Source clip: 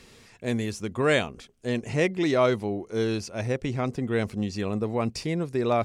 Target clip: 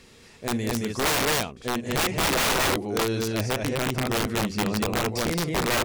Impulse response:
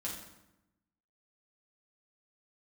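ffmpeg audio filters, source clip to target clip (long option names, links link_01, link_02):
-af "aecho=1:1:46.65|169.1|221.6:0.282|0.251|0.794,aeval=exprs='(mod(7.94*val(0)+1,2)-1)/7.94':channel_layout=same"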